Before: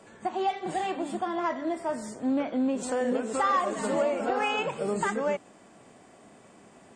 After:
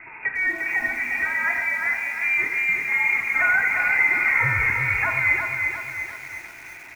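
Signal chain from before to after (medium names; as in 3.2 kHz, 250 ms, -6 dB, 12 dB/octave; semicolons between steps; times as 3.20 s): hum notches 50/100/150/200 Hz; comb 1.7 ms, depth 37%; in parallel at +2 dB: compression 5:1, threshold -42 dBFS, peak gain reduction 19.5 dB; on the sum: saturation -18.5 dBFS, distortion -18 dB; frequency shift -42 Hz; on a send: feedback delay 108 ms, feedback 50%, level -13.5 dB; on the sum: Schroeder reverb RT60 1.4 s, combs from 32 ms, DRR 8.5 dB; frequency inversion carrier 2.6 kHz; bit-crushed delay 353 ms, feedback 55%, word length 8-bit, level -4.5 dB; trim +3.5 dB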